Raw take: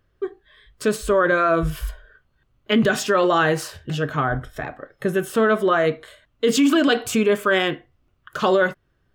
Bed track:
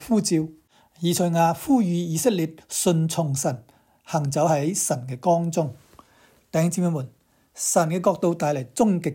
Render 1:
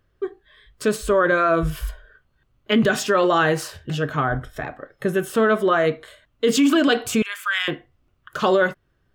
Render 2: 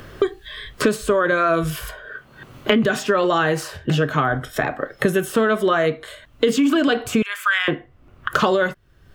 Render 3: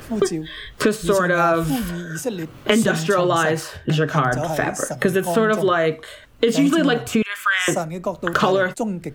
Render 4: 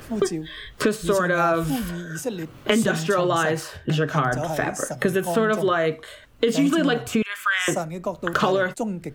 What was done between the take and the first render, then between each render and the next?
0:07.22–0:07.68: high-pass filter 1,300 Hz 24 dB per octave
multiband upward and downward compressor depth 100%
mix in bed track −5 dB
level −3 dB

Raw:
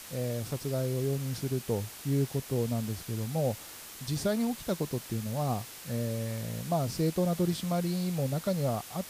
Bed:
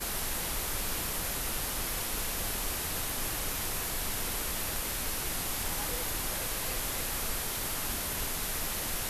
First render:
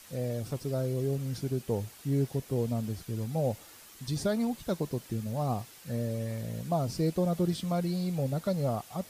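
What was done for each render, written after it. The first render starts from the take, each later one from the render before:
broadband denoise 8 dB, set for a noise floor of −46 dBFS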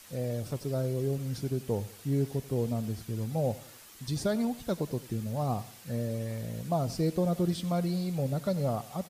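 repeating echo 91 ms, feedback 42%, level −18.5 dB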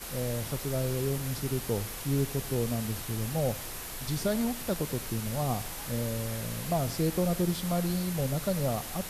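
mix in bed −6 dB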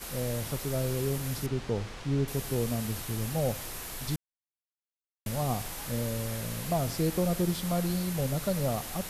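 0:01.46–0:02.28: high-frequency loss of the air 120 metres
0:04.16–0:05.26: silence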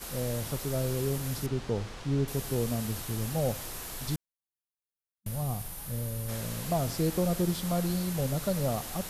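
0:04.26–0:06.29: gain on a spectral selection 210–8,600 Hz −7 dB
parametric band 2,200 Hz −2.5 dB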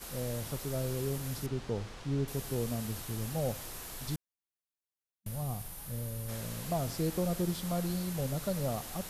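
level −4 dB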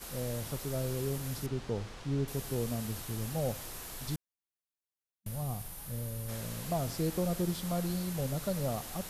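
no processing that can be heard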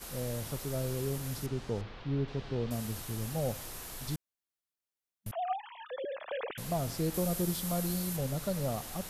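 0:01.81–0:02.71: low-pass filter 4,200 Hz 24 dB per octave
0:05.31–0:06.58: three sine waves on the formant tracks
0:07.14–0:08.17: high-shelf EQ 7,300 Hz +8.5 dB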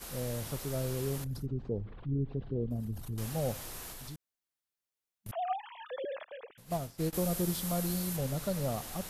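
0:01.24–0:03.18: spectral envelope exaggerated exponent 2
0:03.91–0:05.29: downward compressor 4 to 1, threshold −42 dBFS
0:06.24–0:07.13: expander for the loud parts 2.5 to 1, over −41 dBFS

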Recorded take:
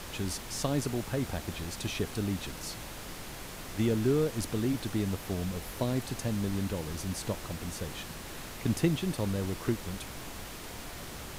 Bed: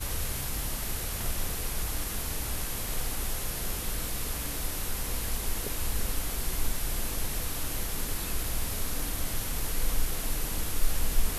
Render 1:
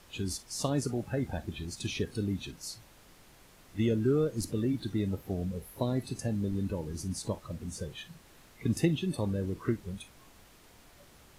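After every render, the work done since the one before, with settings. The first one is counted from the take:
noise reduction from a noise print 15 dB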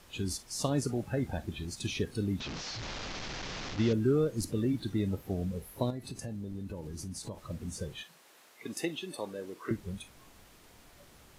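0:02.40–0:03.93: linear delta modulator 32 kbit/s, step −33 dBFS
0:05.90–0:07.49: downward compressor 4 to 1, threshold −37 dBFS
0:08.03–0:09.71: high-pass filter 440 Hz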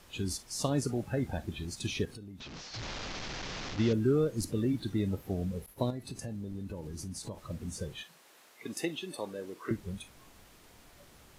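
0:02.05–0:02.74: downward compressor 10 to 1, threshold −43 dBFS
0:05.66–0:06.12: downward expander −46 dBFS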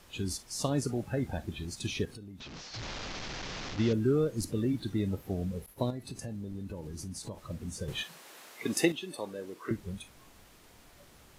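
0:07.88–0:08.92: clip gain +8 dB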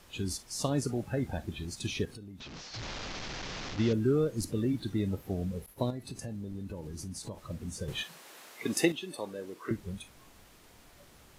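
no processing that can be heard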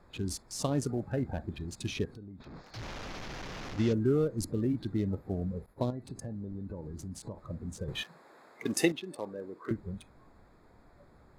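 adaptive Wiener filter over 15 samples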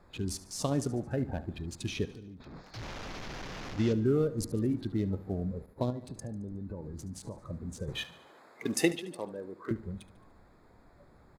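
repeating echo 73 ms, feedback 56%, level −17 dB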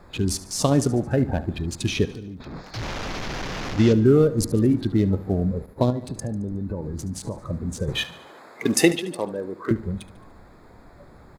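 level +11 dB
brickwall limiter −2 dBFS, peak gain reduction 2 dB

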